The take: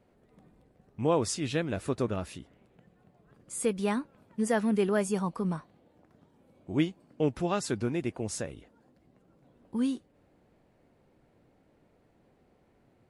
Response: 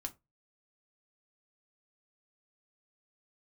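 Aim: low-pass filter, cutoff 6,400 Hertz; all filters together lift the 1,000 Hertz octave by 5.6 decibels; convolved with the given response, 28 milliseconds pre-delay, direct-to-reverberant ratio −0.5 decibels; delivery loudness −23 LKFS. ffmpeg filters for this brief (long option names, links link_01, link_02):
-filter_complex "[0:a]lowpass=6400,equalizer=frequency=1000:width_type=o:gain=7,asplit=2[link_01][link_02];[1:a]atrim=start_sample=2205,adelay=28[link_03];[link_02][link_03]afir=irnorm=-1:irlink=0,volume=2.5dB[link_04];[link_01][link_04]amix=inputs=2:normalize=0,volume=3.5dB"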